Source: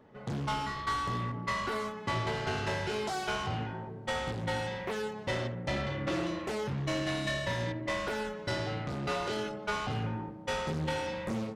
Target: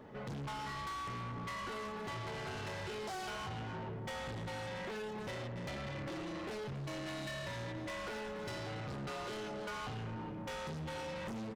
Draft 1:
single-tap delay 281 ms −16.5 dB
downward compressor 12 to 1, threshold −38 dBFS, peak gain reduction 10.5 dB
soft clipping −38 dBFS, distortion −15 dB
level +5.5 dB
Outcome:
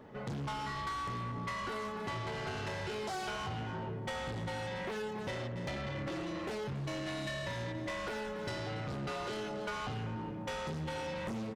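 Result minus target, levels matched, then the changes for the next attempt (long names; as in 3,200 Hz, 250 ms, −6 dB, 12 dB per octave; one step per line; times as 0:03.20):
soft clipping: distortion −6 dB
change: soft clipping −44.5 dBFS, distortion −9 dB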